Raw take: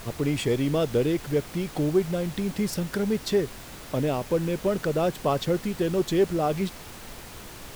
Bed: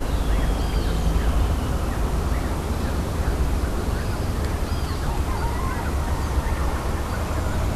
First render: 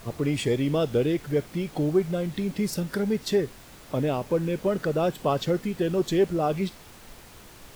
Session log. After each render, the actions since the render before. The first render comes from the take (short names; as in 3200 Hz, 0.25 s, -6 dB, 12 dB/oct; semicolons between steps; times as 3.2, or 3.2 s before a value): noise print and reduce 6 dB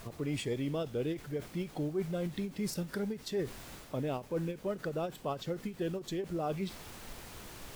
reverse; compressor 5:1, threshold -32 dBFS, peak gain reduction 14 dB; reverse; ending taper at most 200 dB/s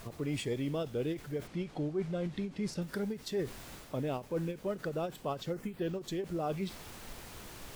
1.47–2.82 air absorption 66 m; 5.52–5.99 bell 2900 Hz -> 13000 Hz -12.5 dB 0.56 oct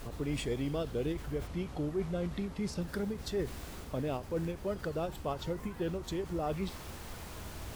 add bed -22.5 dB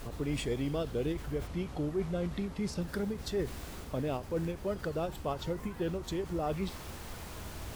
gain +1 dB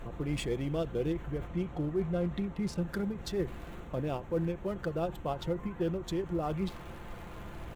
Wiener smoothing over 9 samples; comb 5.8 ms, depth 38%